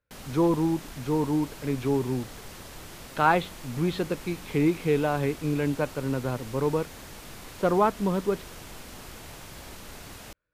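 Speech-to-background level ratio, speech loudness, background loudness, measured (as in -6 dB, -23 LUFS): 16.0 dB, -27.0 LUFS, -43.0 LUFS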